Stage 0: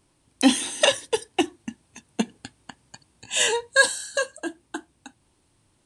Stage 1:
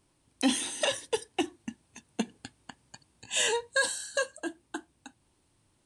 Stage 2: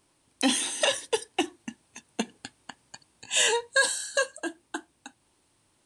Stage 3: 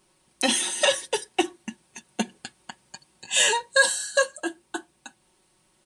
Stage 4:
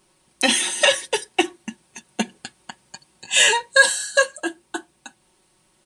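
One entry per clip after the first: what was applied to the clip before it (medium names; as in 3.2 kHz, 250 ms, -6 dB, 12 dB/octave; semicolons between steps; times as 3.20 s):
peak limiter -11 dBFS, peak gain reduction 7 dB; trim -4.5 dB
bass shelf 230 Hz -9.5 dB; trim +4.5 dB
comb 5.4 ms, depth 70%; trim +1.5 dB
dynamic bell 2.2 kHz, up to +6 dB, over -38 dBFS, Q 1.8; trim +3 dB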